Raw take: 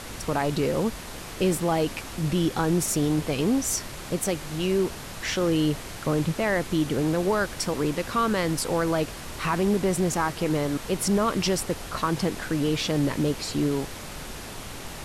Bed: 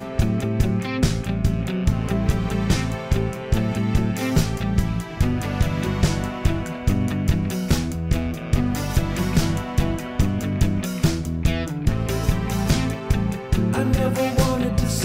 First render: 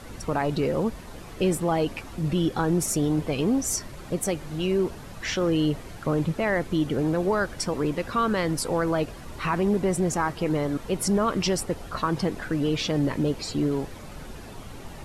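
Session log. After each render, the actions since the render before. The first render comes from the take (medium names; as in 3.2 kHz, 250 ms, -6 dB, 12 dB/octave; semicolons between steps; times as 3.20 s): noise reduction 10 dB, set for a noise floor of -38 dBFS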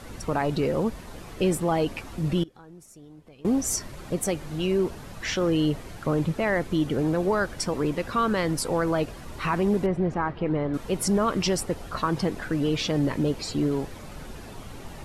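2.43–3.45 s: inverted gate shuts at -22 dBFS, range -24 dB; 9.86–10.74 s: distance through air 370 m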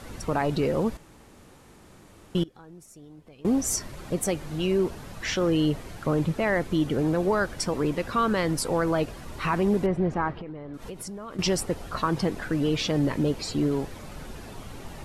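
0.97–2.35 s: room tone; 10.36–11.39 s: compression 10:1, threshold -34 dBFS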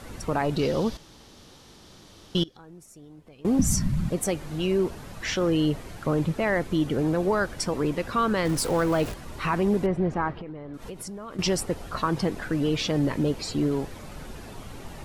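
0.59–2.57 s: high-order bell 4.3 kHz +10.5 dB 1.2 oct; 3.59–4.09 s: resonant low shelf 280 Hz +14 dB, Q 3; 8.45–9.14 s: jump at every zero crossing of -32.5 dBFS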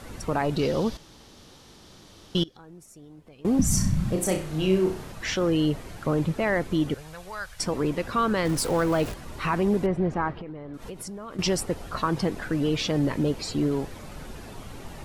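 3.70–5.12 s: flutter echo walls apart 5.5 m, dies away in 0.38 s; 6.94–7.60 s: amplifier tone stack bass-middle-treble 10-0-10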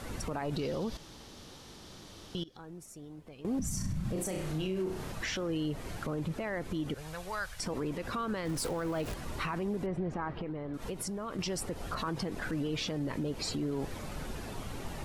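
compression, threshold -27 dBFS, peak gain reduction 10.5 dB; peak limiter -26 dBFS, peak gain reduction 10 dB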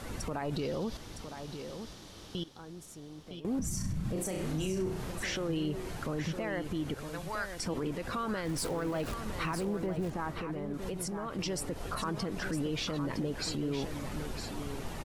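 delay 961 ms -8.5 dB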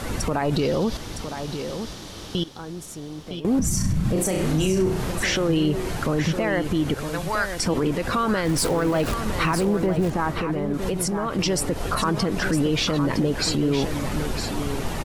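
trim +12 dB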